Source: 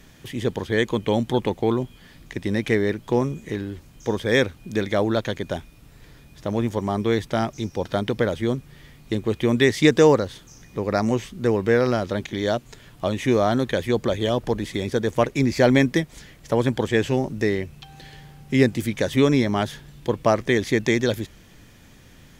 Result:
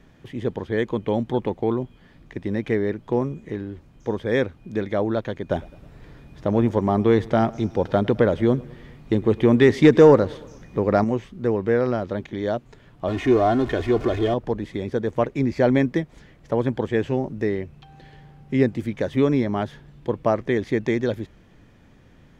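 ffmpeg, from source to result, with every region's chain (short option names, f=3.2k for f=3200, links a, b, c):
-filter_complex "[0:a]asettb=1/sr,asplit=3[a][b][c];[a]atrim=end=5.504[d];[b]atrim=start=5.5:end=11.04,asetpts=PTS-STARTPTS,afade=t=in:d=0.004:c=qsin,afade=t=out:st=5.536:d=0.004:c=qsin,acontrast=52,aecho=1:1:106|212|318|424:0.0708|0.0411|0.0238|0.0138,atrim=end_sample=244314[e];[c]atrim=start=11.036[f];[d][e]acrossfade=d=0.004:c1=hsin:c2=qsin[g];[g][f]acrossfade=d=0.004:c1=qsin:c2=hsin,asettb=1/sr,asplit=3[h][i][j];[h]atrim=end=13.084[k];[i]atrim=start=13.08:end=14.34,asetpts=PTS-STARTPTS,afade=t=in:d=0.004:c=qsin,afade=t=out:st=1.256:d=0.004:c=qsin,aeval=exprs='val(0)+0.5*0.0562*sgn(val(0))':c=same,acrossover=split=8900[l][m];[m]acompressor=threshold=-46dB:ratio=4:attack=1:release=60[n];[l][n]amix=inputs=2:normalize=0,aecho=1:1:2.8:0.63,atrim=end_sample=55566[o];[j]atrim=start=14.336[p];[k][o]acrossfade=d=0.004:c1=hsin:c2=qsin[q];[q][p]acrossfade=d=0.004:c1=qsin:c2=hsin,lowpass=f=1.1k:p=1,lowshelf=f=200:g=-3"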